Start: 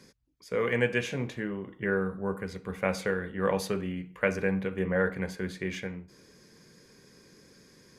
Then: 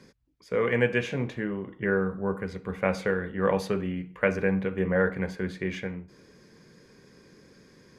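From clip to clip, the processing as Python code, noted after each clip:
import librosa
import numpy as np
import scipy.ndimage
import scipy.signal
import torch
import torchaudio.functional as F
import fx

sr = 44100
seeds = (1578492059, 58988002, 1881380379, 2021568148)

y = fx.high_shelf(x, sr, hz=5000.0, db=-11.5)
y = F.gain(torch.from_numpy(y), 3.0).numpy()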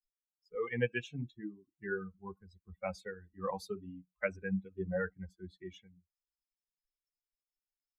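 y = fx.bin_expand(x, sr, power=3.0)
y = F.gain(torch.from_numpy(y), -4.5).numpy()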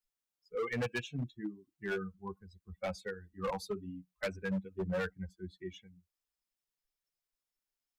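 y = np.clip(x, -10.0 ** (-33.5 / 20.0), 10.0 ** (-33.5 / 20.0))
y = F.gain(torch.from_numpy(y), 3.0).numpy()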